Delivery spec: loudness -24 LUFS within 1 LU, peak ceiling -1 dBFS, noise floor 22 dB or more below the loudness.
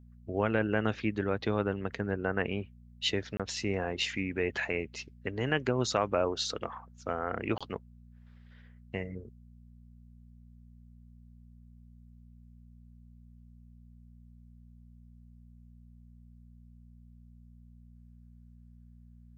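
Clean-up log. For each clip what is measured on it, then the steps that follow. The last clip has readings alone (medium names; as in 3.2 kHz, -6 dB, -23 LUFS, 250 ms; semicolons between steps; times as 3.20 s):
dropouts 2; longest dropout 26 ms; hum 60 Hz; highest harmonic 240 Hz; hum level -52 dBFS; loudness -33.0 LUFS; peak level -13.5 dBFS; loudness target -24.0 LUFS
-> interpolate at 3.37/7.58 s, 26 ms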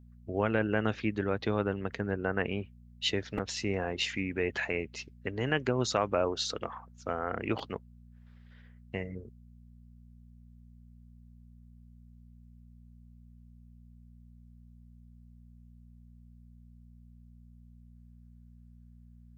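dropouts 0; hum 60 Hz; highest harmonic 240 Hz; hum level -52 dBFS
-> de-hum 60 Hz, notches 4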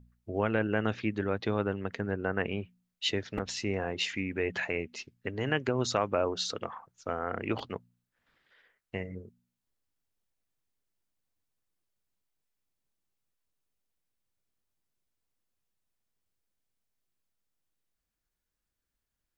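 hum not found; loudness -33.0 LUFS; peak level -13.5 dBFS; loudness target -24.0 LUFS
-> trim +9 dB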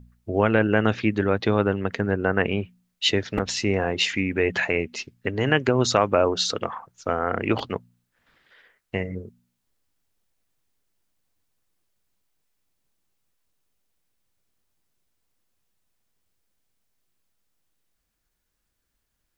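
loudness -24.0 LUFS; peak level -4.5 dBFS; noise floor -77 dBFS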